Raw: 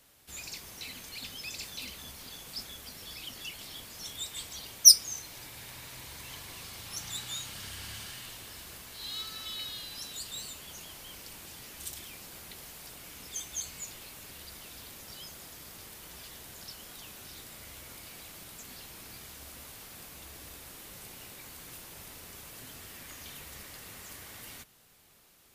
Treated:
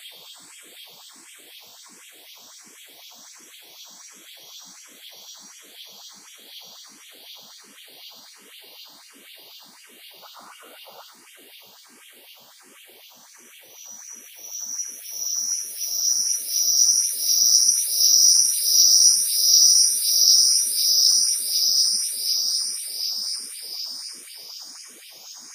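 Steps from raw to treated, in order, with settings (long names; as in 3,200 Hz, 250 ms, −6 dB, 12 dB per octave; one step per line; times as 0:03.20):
high-pass filter 120 Hz 24 dB per octave
extreme stretch with random phases 43×, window 0.25 s, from 0:04.44
sound drawn into the spectrogram noise, 0:10.22–0:11.11, 450–1,500 Hz −46 dBFS
auto-filter high-pass sine 4 Hz 210–3,000 Hz
frequency shifter mixed with the dry sound +1.4 Hz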